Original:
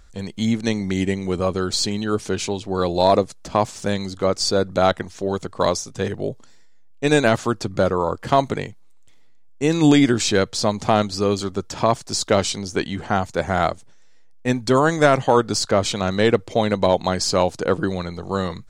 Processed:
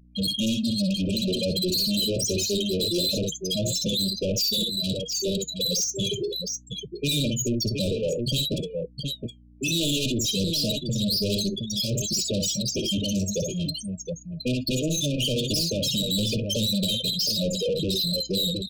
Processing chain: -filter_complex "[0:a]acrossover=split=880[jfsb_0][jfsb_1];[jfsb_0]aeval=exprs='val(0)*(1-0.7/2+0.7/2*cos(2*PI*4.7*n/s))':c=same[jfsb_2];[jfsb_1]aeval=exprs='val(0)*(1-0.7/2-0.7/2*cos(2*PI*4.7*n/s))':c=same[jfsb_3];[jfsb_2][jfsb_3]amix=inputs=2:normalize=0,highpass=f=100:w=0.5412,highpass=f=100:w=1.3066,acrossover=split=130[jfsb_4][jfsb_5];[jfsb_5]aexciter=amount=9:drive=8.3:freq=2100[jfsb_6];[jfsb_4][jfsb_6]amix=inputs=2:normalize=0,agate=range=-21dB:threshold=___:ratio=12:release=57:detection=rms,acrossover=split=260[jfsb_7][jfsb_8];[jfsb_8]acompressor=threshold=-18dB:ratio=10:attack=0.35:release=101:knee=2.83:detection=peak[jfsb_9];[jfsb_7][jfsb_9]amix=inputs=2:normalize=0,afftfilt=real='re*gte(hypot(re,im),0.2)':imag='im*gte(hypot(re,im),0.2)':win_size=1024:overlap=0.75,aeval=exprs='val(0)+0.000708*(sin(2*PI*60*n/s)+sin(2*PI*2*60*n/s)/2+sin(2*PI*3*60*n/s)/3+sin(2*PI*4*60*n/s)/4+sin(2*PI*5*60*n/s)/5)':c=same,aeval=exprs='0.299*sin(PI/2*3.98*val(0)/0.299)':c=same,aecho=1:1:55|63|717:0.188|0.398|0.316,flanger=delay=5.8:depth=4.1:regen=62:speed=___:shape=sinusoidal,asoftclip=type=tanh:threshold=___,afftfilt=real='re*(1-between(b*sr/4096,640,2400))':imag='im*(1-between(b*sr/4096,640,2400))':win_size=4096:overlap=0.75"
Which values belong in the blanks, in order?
-35dB, 0.57, -22dB